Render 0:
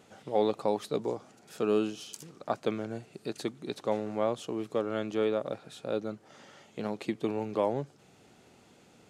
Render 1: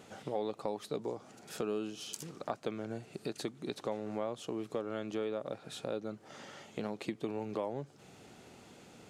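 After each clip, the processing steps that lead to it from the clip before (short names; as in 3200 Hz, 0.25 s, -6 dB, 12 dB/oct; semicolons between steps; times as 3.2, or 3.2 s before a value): compressor 3:1, threshold -40 dBFS, peak gain reduction 14 dB; gain +3.5 dB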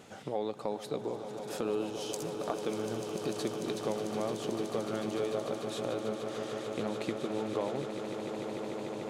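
swelling echo 0.148 s, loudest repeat 8, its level -11.5 dB; gain +1.5 dB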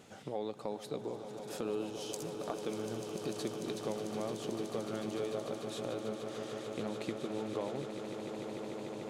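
bell 1000 Hz -2.5 dB 2.8 oct; gain -2.5 dB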